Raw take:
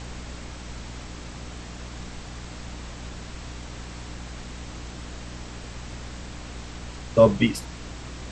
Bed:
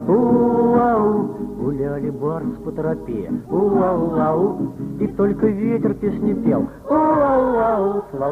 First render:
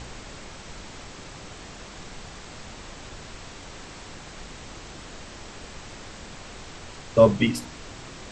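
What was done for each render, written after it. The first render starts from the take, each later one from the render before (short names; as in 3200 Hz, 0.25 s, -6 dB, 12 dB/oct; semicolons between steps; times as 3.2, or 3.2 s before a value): de-hum 60 Hz, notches 5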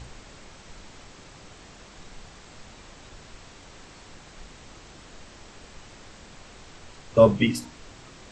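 noise print and reduce 6 dB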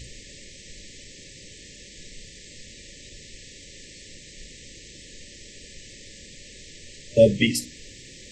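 FFT band-reject 600–1700 Hz; high shelf 2700 Hz +9 dB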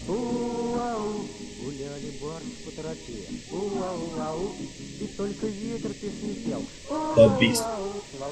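add bed -13.5 dB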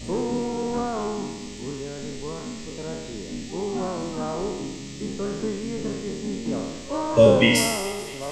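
spectral trails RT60 1.10 s; thin delay 0.219 s, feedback 79%, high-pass 1500 Hz, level -18 dB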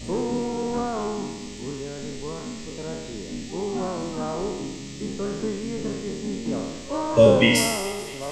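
nothing audible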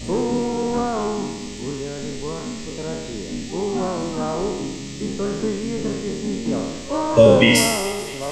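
gain +4.5 dB; limiter -2 dBFS, peak gain reduction 2.5 dB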